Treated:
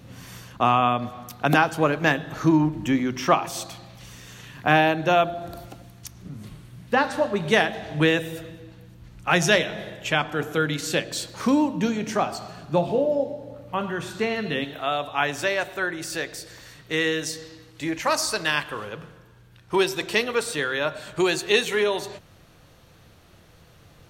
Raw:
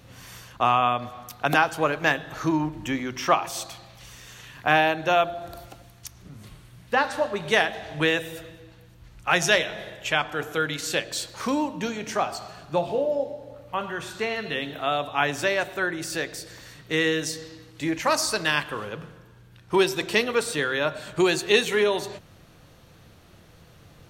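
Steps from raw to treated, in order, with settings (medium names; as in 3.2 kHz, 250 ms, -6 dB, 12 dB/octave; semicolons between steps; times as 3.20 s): peaking EQ 200 Hz +8 dB 1.9 oct, from 14.64 s -2 dB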